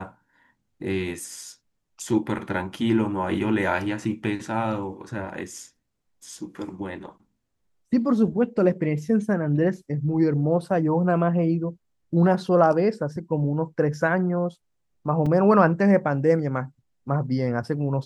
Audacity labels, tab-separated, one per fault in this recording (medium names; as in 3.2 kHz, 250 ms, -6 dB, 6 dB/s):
15.260000	15.260000	dropout 4.5 ms